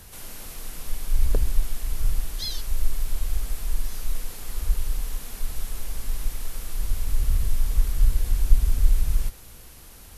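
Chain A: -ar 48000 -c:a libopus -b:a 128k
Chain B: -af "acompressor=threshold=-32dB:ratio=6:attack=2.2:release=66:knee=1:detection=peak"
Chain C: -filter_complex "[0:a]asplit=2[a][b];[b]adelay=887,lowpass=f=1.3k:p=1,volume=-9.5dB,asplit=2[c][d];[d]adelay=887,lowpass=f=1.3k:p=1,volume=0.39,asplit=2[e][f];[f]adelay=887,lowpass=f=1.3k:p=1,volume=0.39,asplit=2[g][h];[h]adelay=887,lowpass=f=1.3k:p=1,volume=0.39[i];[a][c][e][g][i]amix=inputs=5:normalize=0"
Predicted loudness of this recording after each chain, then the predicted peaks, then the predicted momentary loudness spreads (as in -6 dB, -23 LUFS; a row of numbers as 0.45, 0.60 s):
-30.0, -41.5, -29.5 LUFS; -3.0, -25.5, -1.5 dBFS; 13, 5, 12 LU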